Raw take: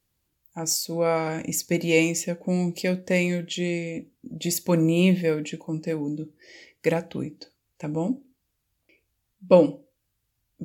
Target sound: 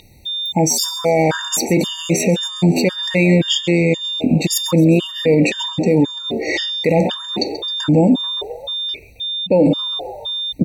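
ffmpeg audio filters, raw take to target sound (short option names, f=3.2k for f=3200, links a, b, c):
-filter_complex "[0:a]areverse,acompressor=threshold=-32dB:ratio=12,areverse,asplit=6[a][b][c][d][e][f];[b]adelay=133,afreqshift=75,volume=-16.5dB[g];[c]adelay=266,afreqshift=150,volume=-21.2dB[h];[d]adelay=399,afreqshift=225,volume=-26dB[i];[e]adelay=532,afreqshift=300,volume=-30.7dB[j];[f]adelay=665,afreqshift=375,volume=-35.4dB[k];[a][g][h][i][j][k]amix=inputs=6:normalize=0,aeval=exprs='val(0)+0.00398*sin(2*PI*3600*n/s)':c=same,highshelf=f=6k:g=-8.5,alimiter=level_in=34dB:limit=-1dB:release=50:level=0:latency=1,afftfilt=real='re*gt(sin(2*PI*1.9*pts/sr)*(1-2*mod(floor(b*sr/1024/930),2)),0)':imag='im*gt(sin(2*PI*1.9*pts/sr)*(1-2*mod(floor(b*sr/1024/930),2)),0)':win_size=1024:overlap=0.75,volume=-4dB"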